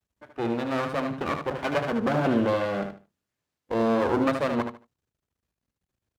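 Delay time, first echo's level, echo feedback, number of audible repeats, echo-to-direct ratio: 75 ms, -7.0 dB, 22%, 3, -7.0 dB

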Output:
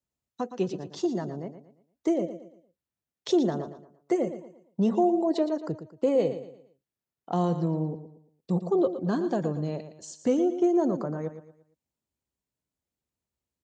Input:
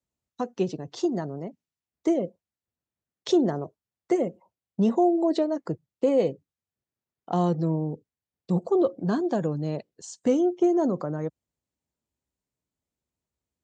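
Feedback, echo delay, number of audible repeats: 36%, 0.115 s, 3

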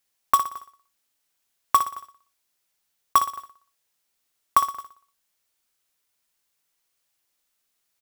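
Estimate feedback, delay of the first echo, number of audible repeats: 43%, 60 ms, 4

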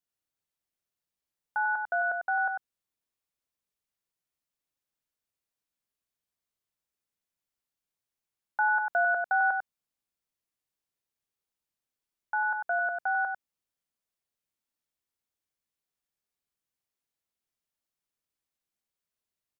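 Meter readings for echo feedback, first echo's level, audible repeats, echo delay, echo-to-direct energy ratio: no steady repeat, -5.5 dB, 1, 97 ms, -5.5 dB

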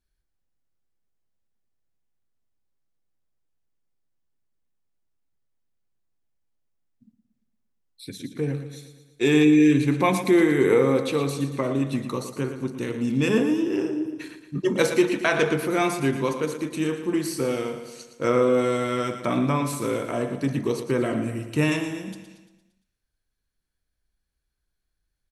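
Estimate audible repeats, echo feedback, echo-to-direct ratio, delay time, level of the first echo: 5, 54%, -9.0 dB, 0.115 s, -10.5 dB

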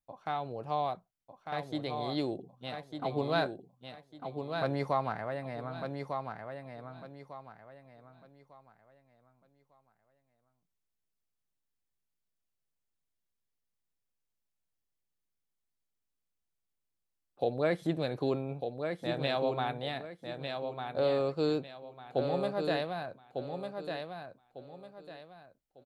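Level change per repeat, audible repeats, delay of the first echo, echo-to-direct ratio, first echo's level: -10.5 dB, 3, 1.2 s, -5.5 dB, -6.0 dB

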